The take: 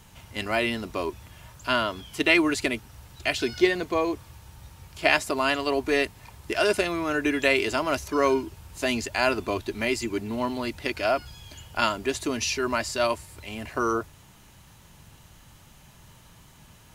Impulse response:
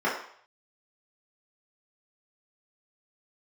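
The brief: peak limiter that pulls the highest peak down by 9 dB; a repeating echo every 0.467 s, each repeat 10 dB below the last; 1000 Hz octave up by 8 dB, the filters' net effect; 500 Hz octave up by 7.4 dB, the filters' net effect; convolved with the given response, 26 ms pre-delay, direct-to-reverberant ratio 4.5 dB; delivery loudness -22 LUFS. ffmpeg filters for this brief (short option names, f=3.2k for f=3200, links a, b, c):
-filter_complex "[0:a]equalizer=f=500:t=o:g=7.5,equalizer=f=1k:t=o:g=8,alimiter=limit=-10.5dB:level=0:latency=1,aecho=1:1:467|934|1401|1868:0.316|0.101|0.0324|0.0104,asplit=2[a][b];[1:a]atrim=start_sample=2205,adelay=26[c];[b][c]afir=irnorm=-1:irlink=0,volume=-18.5dB[d];[a][d]amix=inputs=2:normalize=0,volume=-0.5dB"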